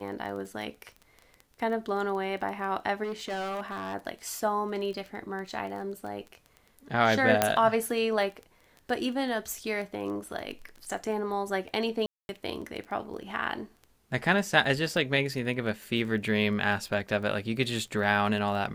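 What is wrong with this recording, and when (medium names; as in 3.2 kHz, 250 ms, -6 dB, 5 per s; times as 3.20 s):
crackle 11 per s -35 dBFS
3.03–3.95 s: clipped -30 dBFS
7.42 s: pop -6 dBFS
12.06–12.29 s: dropout 231 ms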